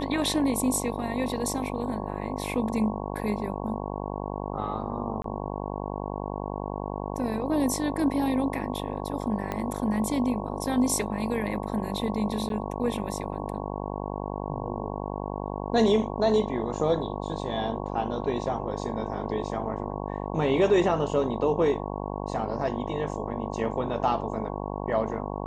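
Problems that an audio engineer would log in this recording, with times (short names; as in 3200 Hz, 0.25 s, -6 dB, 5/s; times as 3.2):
buzz 50 Hz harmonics 22 -33 dBFS
5.22–5.24 gap 23 ms
9.52 pop -17 dBFS
12.49–12.5 gap 12 ms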